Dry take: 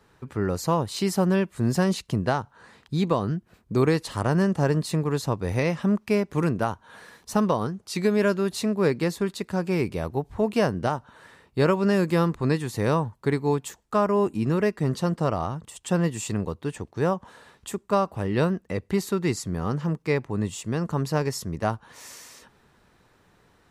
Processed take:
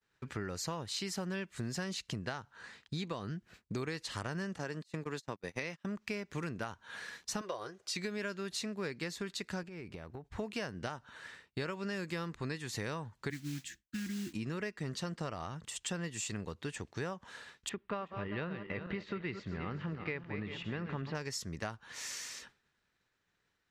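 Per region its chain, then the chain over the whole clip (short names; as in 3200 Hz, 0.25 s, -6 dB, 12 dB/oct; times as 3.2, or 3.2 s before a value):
4.58–5.97 HPF 170 Hz + gate -30 dBFS, range -35 dB + upward compressor, threshold -30 dBFS
7.41–7.96 resonant low shelf 310 Hz -10 dB, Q 3 + notch comb 440 Hz
9.63–10.32 expander -37 dBFS + high shelf 2500 Hz -11 dB + compressor 16:1, threshold -35 dBFS
13.3–14.33 Chebyshev band-stop 340–1600 Hz, order 5 + high shelf 2700 Hz -11.5 dB + modulation noise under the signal 18 dB
17.69–21.15 regenerating reverse delay 0.196 s, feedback 60%, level -10.5 dB + LPF 3200 Hz 24 dB/oct
whole clip: expander -48 dBFS; band shelf 3300 Hz +9.5 dB 2.7 oct; compressor 6:1, threshold -30 dBFS; gain -6 dB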